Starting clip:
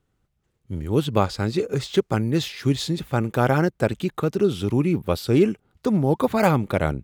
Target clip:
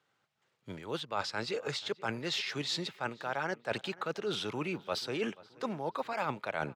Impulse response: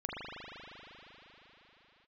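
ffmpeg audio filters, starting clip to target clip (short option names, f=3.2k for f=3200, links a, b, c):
-filter_complex "[0:a]highpass=f=110:w=0.5412,highpass=f=110:w=1.3066,acrossover=split=590 6300:gain=0.141 1 0.126[a][b][c];[a][b][c]amix=inputs=3:normalize=0,areverse,acompressor=threshold=-37dB:ratio=6,areverse,asplit=2[d][e];[e]adelay=502,lowpass=f=2.5k:p=1,volume=-20dB,asplit=2[f][g];[g]adelay=502,lowpass=f=2.5k:p=1,volume=0.48,asplit=2[h][i];[i]adelay=502,lowpass=f=2.5k:p=1,volume=0.48,asplit=2[j][k];[k]adelay=502,lowpass=f=2.5k:p=1,volume=0.48[l];[d][f][h][j][l]amix=inputs=5:normalize=0,asetrate=45938,aresample=44100,volume=5dB"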